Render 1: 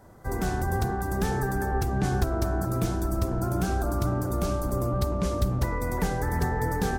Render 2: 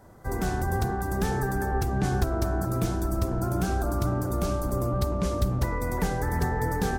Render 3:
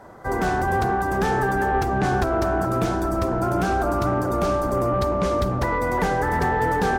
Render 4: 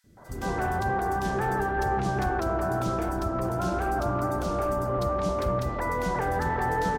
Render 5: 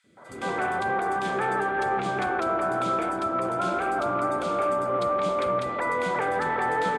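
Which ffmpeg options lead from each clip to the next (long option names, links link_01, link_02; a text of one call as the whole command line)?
ffmpeg -i in.wav -af anull out.wav
ffmpeg -i in.wav -filter_complex "[0:a]asplit=2[link_01][link_02];[link_02]highpass=frequency=720:poles=1,volume=16dB,asoftclip=type=tanh:threshold=-12.5dB[link_03];[link_01][link_03]amix=inputs=2:normalize=0,lowpass=frequency=1500:poles=1,volume=-6dB,volume=3.5dB" out.wav
ffmpeg -i in.wav -filter_complex "[0:a]acrossover=split=310|2600[link_01][link_02][link_03];[link_01]adelay=40[link_04];[link_02]adelay=170[link_05];[link_04][link_05][link_03]amix=inputs=3:normalize=0,volume=-4.5dB" out.wav
ffmpeg -i in.wav -af "highpass=210,equalizer=frequency=530:width_type=q:width=4:gain=4,equalizer=frequency=1300:width_type=q:width=4:gain=7,equalizer=frequency=2300:width_type=q:width=4:gain=10,equalizer=frequency=3400:width_type=q:width=4:gain=7,equalizer=frequency=5700:width_type=q:width=4:gain=-8,equalizer=frequency=8900:width_type=q:width=4:gain=3,lowpass=frequency=9500:width=0.5412,lowpass=frequency=9500:width=1.3066" out.wav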